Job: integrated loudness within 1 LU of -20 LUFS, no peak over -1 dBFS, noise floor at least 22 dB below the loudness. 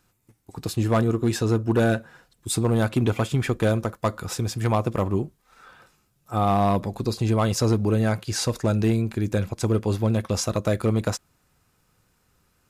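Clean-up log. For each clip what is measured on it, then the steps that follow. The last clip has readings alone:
clipped 0.9%; flat tops at -14.0 dBFS; loudness -24.0 LUFS; peak -14.0 dBFS; loudness target -20.0 LUFS
-> clip repair -14 dBFS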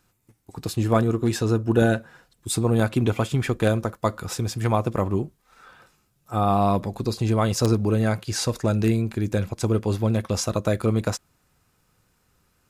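clipped 0.0%; loudness -23.5 LUFS; peak -5.0 dBFS; loudness target -20.0 LUFS
-> gain +3.5 dB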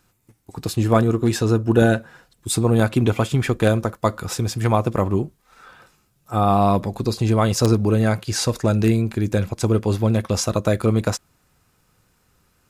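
loudness -20.0 LUFS; peak -1.5 dBFS; noise floor -64 dBFS

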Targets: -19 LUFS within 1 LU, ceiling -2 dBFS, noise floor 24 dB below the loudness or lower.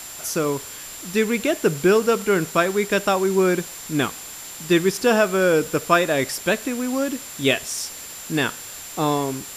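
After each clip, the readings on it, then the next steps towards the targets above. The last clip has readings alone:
steady tone 7300 Hz; tone level -38 dBFS; noise floor -37 dBFS; noise floor target -46 dBFS; loudness -21.5 LUFS; peak -3.5 dBFS; loudness target -19.0 LUFS
-> notch 7300 Hz, Q 30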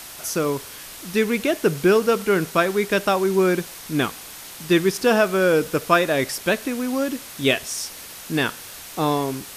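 steady tone none; noise floor -39 dBFS; noise floor target -46 dBFS
-> denoiser 7 dB, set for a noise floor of -39 dBFS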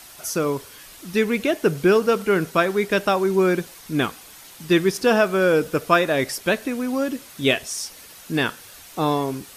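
noise floor -44 dBFS; noise floor target -46 dBFS
-> denoiser 6 dB, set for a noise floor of -44 dBFS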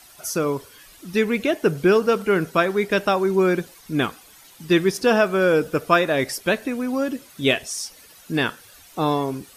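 noise floor -49 dBFS; loudness -21.5 LUFS; peak -3.0 dBFS; loudness target -19.0 LUFS
-> gain +2.5 dB; limiter -2 dBFS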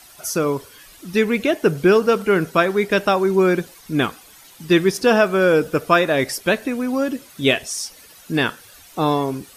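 loudness -19.0 LUFS; peak -2.0 dBFS; noise floor -46 dBFS

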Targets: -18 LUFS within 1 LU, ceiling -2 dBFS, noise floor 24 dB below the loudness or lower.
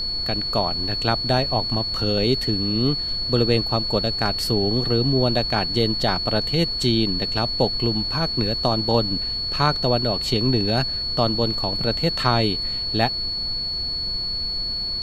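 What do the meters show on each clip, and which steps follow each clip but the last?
steady tone 4400 Hz; tone level -24 dBFS; noise floor -27 dBFS; noise floor target -45 dBFS; loudness -21.0 LUFS; peak -3.0 dBFS; loudness target -18.0 LUFS
-> notch 4400 Hz, Q 30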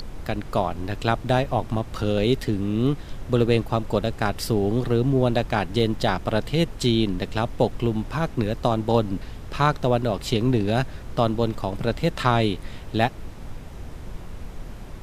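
steady tone none; noise floor -38 dBFS; noise floor target -48 dBFS
-> noise print and reduce 10 dB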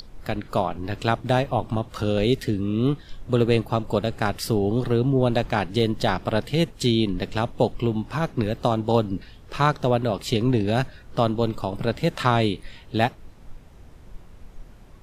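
noise floor -47 dBFS; noise floor target -48 dBFS
-> noise print and reduce 6 dB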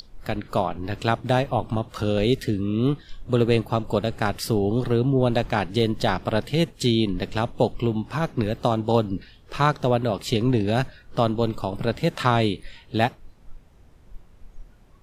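noise floor -52 dBFS; loudness -24.0 LUFS; peak -3.5 dBFS; loudness target -18.0 LUFS
-> gain +6 dB; limiter -2 dBFS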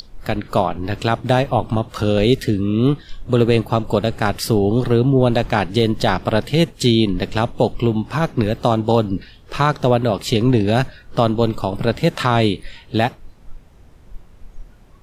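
loudness -18.5 LUFS; peak -2.0 dBFS; noise floor -46 dBFS

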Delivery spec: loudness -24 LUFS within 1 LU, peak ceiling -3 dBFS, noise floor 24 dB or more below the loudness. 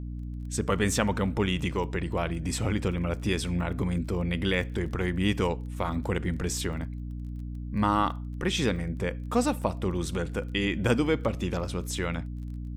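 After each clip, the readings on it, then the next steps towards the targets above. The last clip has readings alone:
ticks 20/s; hum 60 Hz; harmonics up to 300 Hz; hum level -33 dBFS; loudness -29.0 LUFS; peak -10.5 dBFS; loudness target -24.0 LUFS
-> de-click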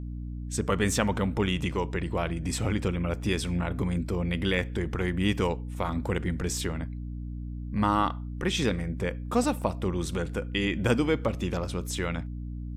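ticks 0/s; hum 60 Hz; harmonics up to 300 Hz; hum level -33 dBFS
-> notches 60/120/180/240/300 Hz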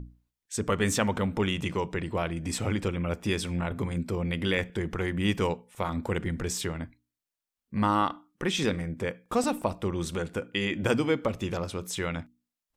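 hum none; loudness -30.0 LUFS; peak -10.5 dBFS; loudness target -24.0 LUFS
-> gain +6 dB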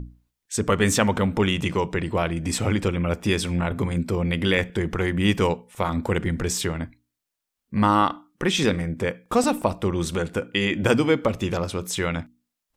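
loudness -24.0 LUFS; peak -4.5 dBFS; noise floor -84 dBFS

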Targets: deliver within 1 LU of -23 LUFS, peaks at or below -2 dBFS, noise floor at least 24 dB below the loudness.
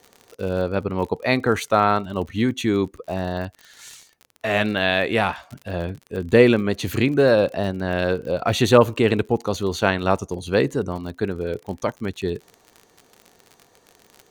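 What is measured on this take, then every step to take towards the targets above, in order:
ticks 44/s; loudness -21.5 LUFS; peak -1.5 dBFS; loudness target -23.0 LUFS
-> de-click; gain -1.5 dB

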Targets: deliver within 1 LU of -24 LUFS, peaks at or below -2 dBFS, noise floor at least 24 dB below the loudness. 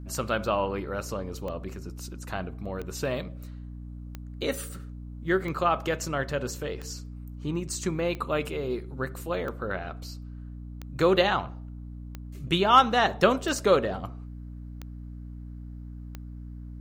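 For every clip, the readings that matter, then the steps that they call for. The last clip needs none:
clicks 13; hum 60 Hz; harmonics up to 300 Hz; hum level -37 dBFS; loudness -27.5 LUFS; peak -6.0 dBFS; loudness target -24.0 LUFS
-> de-click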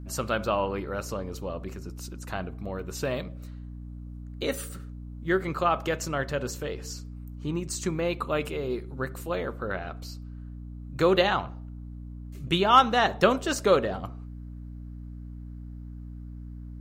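clicks 0; hum 60 Hz; harmonics up to 300 Hz; hum level -37 dBFS
-> de-hum 60 Hz, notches 5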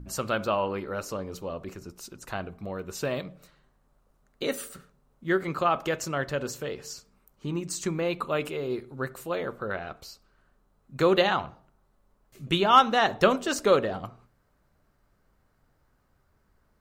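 hum none; loudness -27.5 LUFS; peak -6.0 dBFS; loudness target -24.0 LUFS
-> gain +3.5 dB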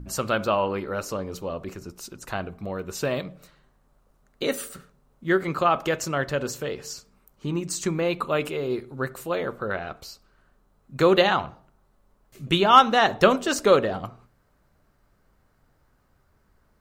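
loudness -24.0 LUFS; peak -2.5 dBFS; noise floor -65 dBFS

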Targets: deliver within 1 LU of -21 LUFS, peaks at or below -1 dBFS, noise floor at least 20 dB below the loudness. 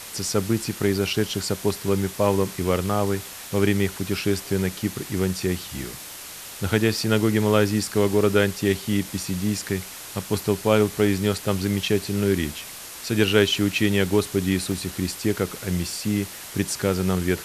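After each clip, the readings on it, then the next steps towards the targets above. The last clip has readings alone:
dropouts 6; longest dropout 1.7 ms; noise floor -39 dBFS; noise floor target -44 dBFS; loudness -23.5 LUFS; peak -4.5 dBFS; loudness target -21.0 LUFS
-> interpolate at 1.07/4.52/7.04/8.93/11.38/14.72, 1.7 ms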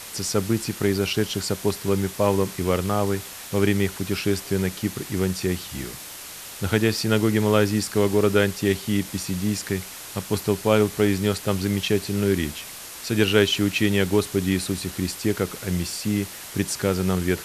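dropouts 0; noise floor -39 dBFS; noise floor target -44 dBFS
-> denoiser 6 dB, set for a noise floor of -39 dBFS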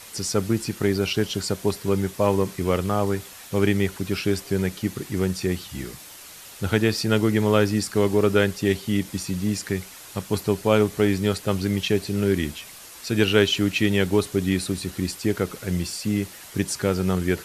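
noise floor -43 dBFS; noise floor target -44 dBFS
-> denoiser 6 dB, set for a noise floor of -43 dBFS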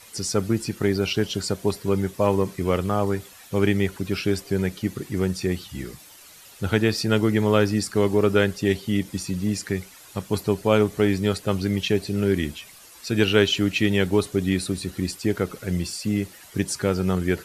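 noise floor -47 dBFS; loudness -24.0 LUFS; peak -4.5 dBFS; loudness target -21.0 LUFS
-> gain +3 dB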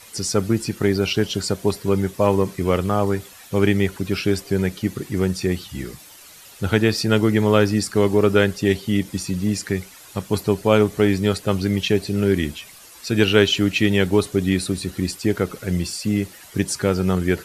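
loudness -21.0 LUFS; peak -1.5 dBFS; noise floor -44 dBFS

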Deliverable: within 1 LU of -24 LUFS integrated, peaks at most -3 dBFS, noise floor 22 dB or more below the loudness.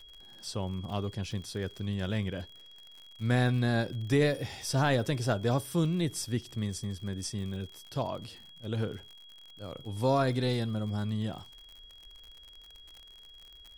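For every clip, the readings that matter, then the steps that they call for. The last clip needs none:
ticks 59/s; steady tone 3300 Hz; tone level -51 dBFS; loudness -32.0 LUFS; peak -15.5 dBFS; loudness target -24.0 LUFS
-> de-click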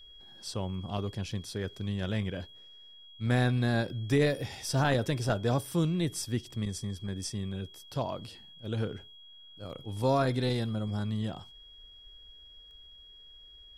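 ticks 0.29/s; steady tone 3300 Hz; tone level -51 dBFS
-> notch 3300 Hz, Q 30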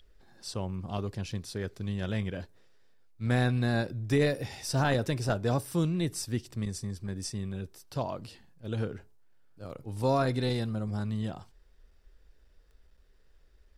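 steady tone none; loudness -32.0 LUFS; peak -16.0 dBFS; loudness target -24.0 LUFS
-> gain +8 dB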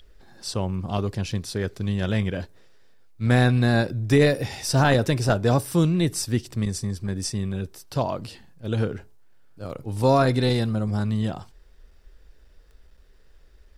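loudness -24.0 LUFS; peak -8.0 dBFS; noise floor -52 dBFS

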